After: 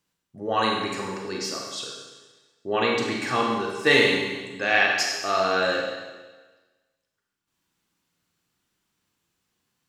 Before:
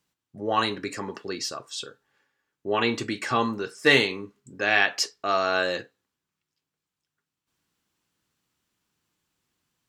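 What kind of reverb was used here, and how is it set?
Schroeder reverb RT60 1.3 s, combs from 32 ms, DRR -0.5 dB; trim -1.5 dB

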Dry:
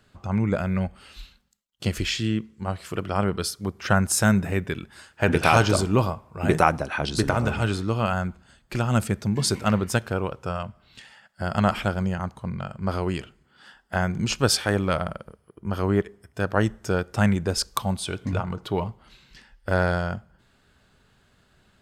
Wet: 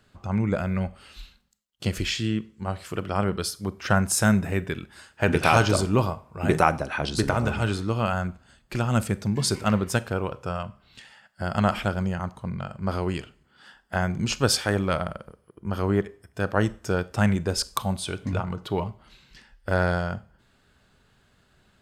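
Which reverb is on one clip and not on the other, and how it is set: Schroeder reverb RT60 0.35 s, combs from 30 ms, DRR 18 dB; trim -1 dB

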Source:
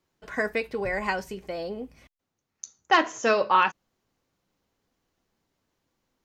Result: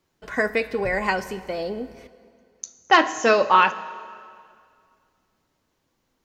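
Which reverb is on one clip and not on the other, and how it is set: plate-style reverb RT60 2.2 s, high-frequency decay 0.9×, DRR 14 dB; trim +4.5 dB

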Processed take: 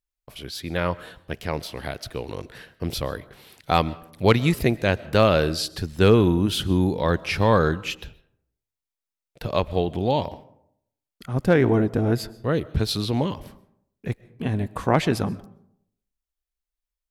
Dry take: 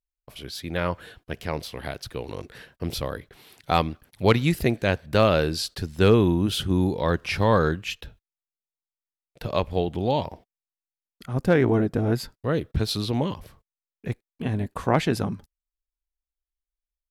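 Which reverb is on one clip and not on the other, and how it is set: algorithmic reverb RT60 0.72 s, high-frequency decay 0.45×, pre-delay 90 ms, DRR 20 dB; trim +1.5 dB

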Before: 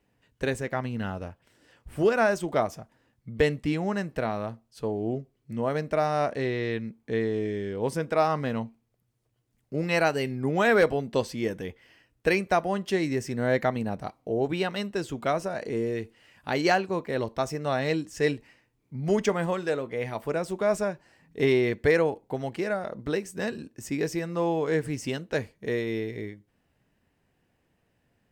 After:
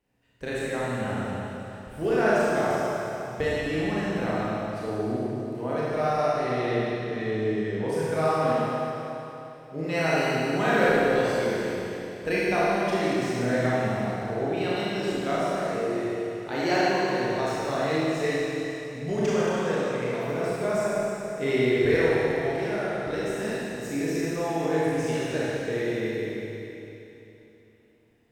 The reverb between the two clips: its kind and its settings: Schroeder reverb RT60 3.2 s, combs from 25 ms, DRR -9 dB; trim -7.5 dB

